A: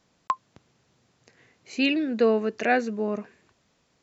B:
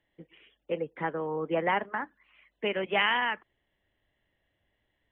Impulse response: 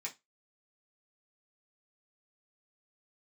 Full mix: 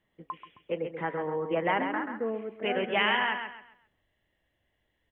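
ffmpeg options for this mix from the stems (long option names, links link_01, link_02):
-filter_complex "[0:a]lowpass=frequency=1300:width=0.5412,lowpass=frequency=1300:width=1.3066,volume=-11.5dB,asplit=2[link_01][link_02];[link_02]volume=-12dB[link_03];[1:a]bandreject=frequency=138.9:width_type=h:width=4,bandreject=frequency=277.8:width_type=h:width=4,bandreject=frequency=416.7:width_type=h:width=4,bandreject=frequency=555.6:width_type=h:width=4,bandreject=frequency=694.5:width_type=h:width=4,bandreject=frequency=833.4:width_type=h:width=4,bandreject=frequency=972.3:width_type=h:width=4,bandreject=frequency=1111.2:width_type=h:width=4,bandreject=frequency=1250.1:width_type=h:width=4,bandreject=frequency=1389:width_type=h:width=4,bandreject=frequency=1527.9:width_type=h:width=4,bandreject=frequency=1666.8:width_type=h:width=4,bandreject=frequency=1805.7:width_type=h:width=4,bandreject=frequency=1944.6:width_type=h:width=4,volume=-0.5dB,asplit=2[link_04][link_05];[link_05]volume=-7dB[link_06];[link_03][link_06]amix=inputs=2:normalize=0,aecho=0:1:133|266|399|532:1|0.31|0.0961|0.0298[link_07];[link_01][link_04][link_07]amix=inputs=3:normalize=0"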